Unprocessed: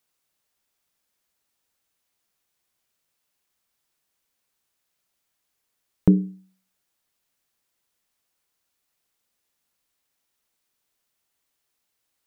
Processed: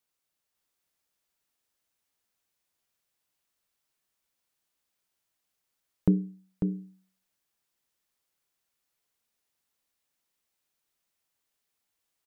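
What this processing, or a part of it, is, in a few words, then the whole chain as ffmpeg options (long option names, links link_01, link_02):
ducked delay: -filter_complex "[0:a]asplit=3[link_01][link_02][link_03];[link_02]adelay=546,volume=-2dB[link_04];[link_03]apad=whole_len=565077[link_05];[link_04][link_05]sidechaincompress=threshold=-31dB:ratio=8:attack=44:release=560[link_06];[link_01][link_06]amix=inputs=2:normalize=0,volume=-6.5dB"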